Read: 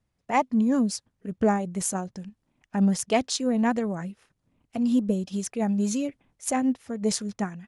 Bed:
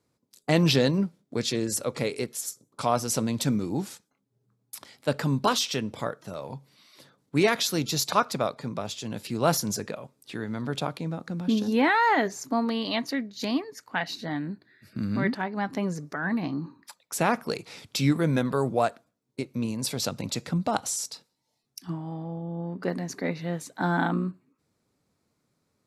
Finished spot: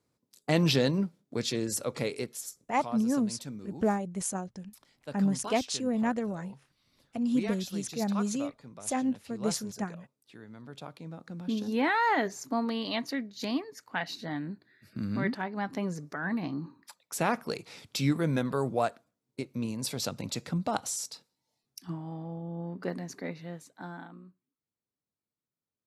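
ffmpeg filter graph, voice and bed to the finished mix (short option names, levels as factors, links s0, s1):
-filter_complex "[0:a]adelay=2400,volume=0.562[s0];[1:a]volume=2.51,afade=t=out:st=2.11:d=0.82:silence=0.251189,afade=t=in:st=10.74:d=1.33:silence=0.266073,afade=t=out:st=22.7:d=1.38:silence=0.11885[s1];[s0][s1]amix=inputs=2:normalize=0"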